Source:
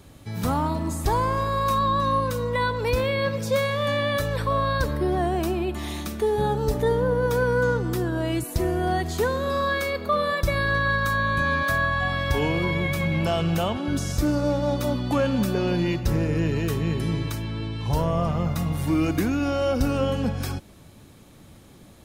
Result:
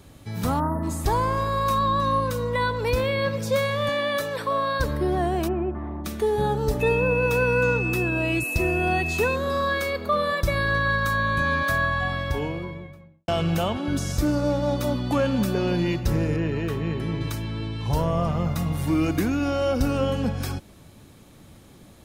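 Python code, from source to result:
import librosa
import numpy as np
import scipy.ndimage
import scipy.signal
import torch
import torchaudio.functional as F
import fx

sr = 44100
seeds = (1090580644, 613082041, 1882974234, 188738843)

y = fx.spec_erase(x, sr, start_s=0.6, length_s=0.23, low_hz=2000.0, high_hz=9300.0)
y = fx.highpass(y, sr, hz=240.0, slope=12, at=(3.89, 4.8))
y = fx.lowpass(y, sr, hz=fx.line((5.47, 2100.0), (6.04, 1100.0)), slope=24, at=(5.47, 6.04), fade=0.02)
y = fx.dmg_tone(y, sr, hz=2600.0, level_db=-27.0, at=(6.8, 9.34), fade=0.02)
y = fx.studio_fade_out(y, sr, start_s=11.83, length_s=1.45)
y = fx.bass_treble(y, sr, bass_db=-3, treble_db=-11, at=(16.36, 17.21))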